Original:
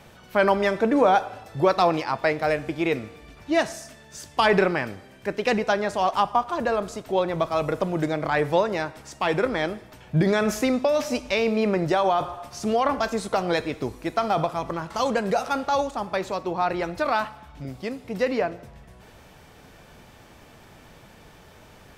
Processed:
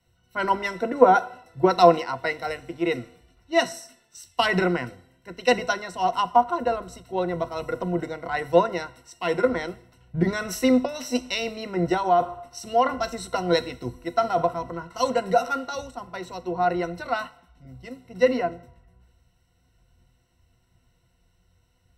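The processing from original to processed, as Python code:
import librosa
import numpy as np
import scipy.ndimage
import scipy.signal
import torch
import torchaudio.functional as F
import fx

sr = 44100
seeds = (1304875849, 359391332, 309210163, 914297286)

y = fx.ripple_eq(x, sr, per_octave=2.0, db=16)
y = fx.band_widen(y, sr, depth_pct=70)
y = F.gain(torch.from_numpy(y), -4.5).numpy()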